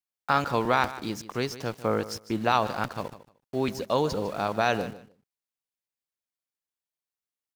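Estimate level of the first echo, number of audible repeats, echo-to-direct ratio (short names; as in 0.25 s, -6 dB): -15.5 dB, 2, -15.5 dB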